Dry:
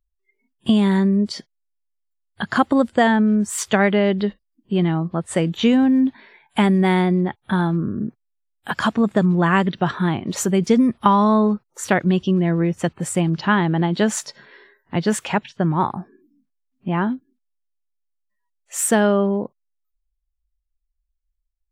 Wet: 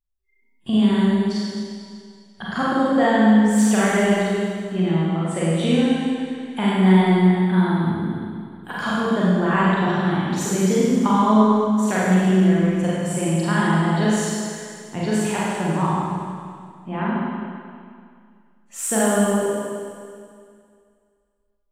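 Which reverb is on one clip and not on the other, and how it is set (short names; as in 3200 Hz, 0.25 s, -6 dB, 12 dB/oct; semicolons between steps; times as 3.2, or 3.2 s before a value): Schroeder reverb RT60 2.2 s, combs from 33 ms, DRR -8 dB; gain -9 dB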